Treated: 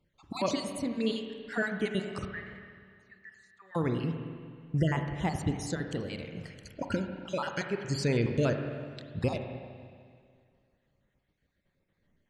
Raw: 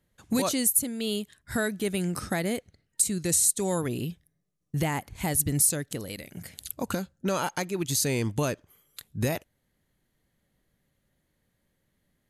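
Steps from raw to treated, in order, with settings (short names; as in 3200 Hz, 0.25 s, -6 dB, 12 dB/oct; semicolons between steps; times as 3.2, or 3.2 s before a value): random spectral dropouts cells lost 40%; Gaussian blur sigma 1.6 samples; 2.25–3.75 auto-wah 650–1800 Hz, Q 11, up, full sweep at -34.5 dBFS; spring tank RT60 2.1 s, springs 31/42/49 ms, chirp 70 ms, DRR 5 dB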